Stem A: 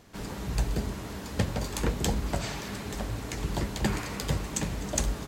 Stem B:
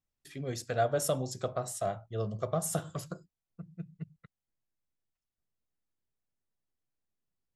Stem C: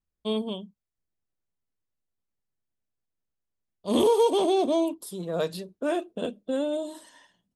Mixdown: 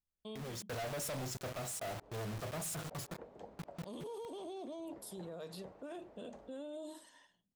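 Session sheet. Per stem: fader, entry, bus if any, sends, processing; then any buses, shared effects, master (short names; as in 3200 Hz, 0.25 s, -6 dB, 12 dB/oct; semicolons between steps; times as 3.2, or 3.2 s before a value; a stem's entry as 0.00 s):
-13.0 dB, 1.35 s, no send, band-pass 610 Hz, Q 2.2
-4.5 dB, 0.00 s, no send, AGC gain up to 5 dB; companded quantiser 2-bit
-8.5 dB, 0.00 s, no send, compressor, threshold -23 dBFS, peak gain reduction 6.5 dB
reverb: off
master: limiter -38.5 dBFS, peak gain reduction 16.5 dB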